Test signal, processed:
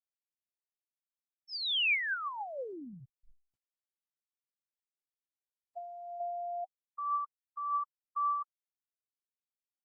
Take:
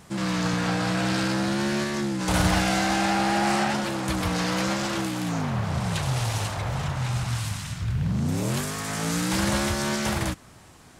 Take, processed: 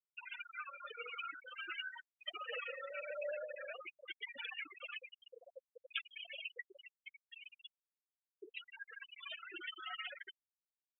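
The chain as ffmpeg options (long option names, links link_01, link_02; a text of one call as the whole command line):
ffmpeg -i in.wav -filter_complex "[0:a]highpass=frequency=490:width_type=q:width=0.5412,highpass=frequency=490:width_type=q:width=1.307,lowpass=frequency=3500:width_type=q:width=0.5176,lowpass=frequency=3500:width_type=q:width=0.7071,lowpass=frequency=3500:width_type=q:width=1.932,afreqshift=-210,aeval=exprs='0.2*(cos(1*acos(clip(val(0)/0.2,-1,1)))-cos(1*PI/2))+0.00447*(cos(4*acos(clip(val(0)/0.2,-1,1)))-cos(4*PI/2))':channel_layout=same,aecho=1:1:104:0.0944,asplit=2[link_01][link_02];[link_02]acompressor=threshold=-42dB:ratio=10,volume=0dB[link_03];[link_01][link_03]amix=inputs=2:normalize=0,alimiter=limit=-21.5dB:level=0:latency=1:release=96,crystalizer=i=8.5:c=0,areverse,acompressor=mode=upward:threshold=-35dB:ratio=2.5,areverse,equalizer=frequency=900:width_type=o:width=2:gain=-4,afftfilt=real='re*gte(hypot(re,im),0.158)':imag='im*gte(hypot(re,im),0.158)':win_size=1024:overlap=0.75,flanger=delay=1.2:depth=1.4:regen=55:speed=0.67:shape=sinusoidal,volume=-5dB" -ar 48000 -c:a libopus -b:a 48k out.opus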